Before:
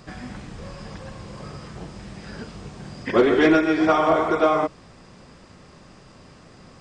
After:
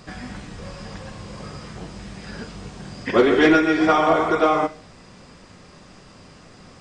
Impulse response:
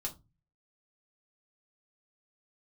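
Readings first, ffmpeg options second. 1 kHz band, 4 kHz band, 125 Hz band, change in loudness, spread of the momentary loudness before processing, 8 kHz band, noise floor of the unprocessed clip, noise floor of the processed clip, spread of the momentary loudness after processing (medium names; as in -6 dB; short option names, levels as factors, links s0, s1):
+2.0 dB, +3.5 dB, +1.0 dB, +1.5 dB, 21 LU, no reading, -49 dBFS, -47 dBFS, 21 LU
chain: -filter_complex "[0:a]asplit=2[s0][s1];[s1]tiltshelf=f=970:g=-6[s2];[1:a]atrim=start_sample=2205,asetrate=23814,aresample=44100[s3];[s2][s3]afir=irnorm=-1:irlink=0,volume=0.237[s4];[s0][s4]amix=inputs=2:normalize=0"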